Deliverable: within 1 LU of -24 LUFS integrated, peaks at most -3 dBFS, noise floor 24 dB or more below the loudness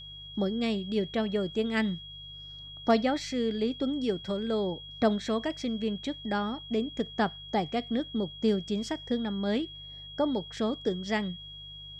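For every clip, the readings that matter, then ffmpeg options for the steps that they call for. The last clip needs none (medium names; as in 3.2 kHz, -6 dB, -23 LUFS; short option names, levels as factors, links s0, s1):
hum 50 Hz; highest harmonic 150 Hz; hum level -49 dBFS; steady tone 3.3 kHz; tone level -43 dBFS; loudness -30.5 LUFS; peak level -11.5 dBFS; loudness target -24.0 LUFS
-> -af "bandreject=f=50:t=h:w=4,bandreject=f=100:t=h:w=4,bandreject=f=150:t=h:w=4"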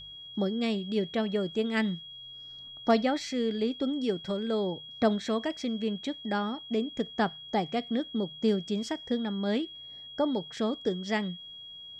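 hum not found; steady tone 3.3 kHz; tone level -43 dBFS
-> -af "bandreject=f=3300:w=30"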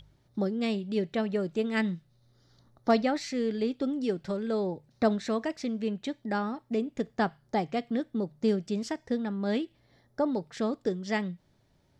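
steady tone not found; loudness -31.0 LUFS; peak level -12.0 dBFS; loudness target -24.0 LUFS
-> -af "volume=2.24"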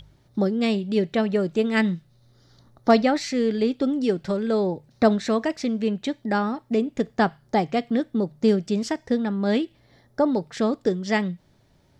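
loudness -24.0 LUFS; peak level -5.0 dBFS; noise floor -60 dBFS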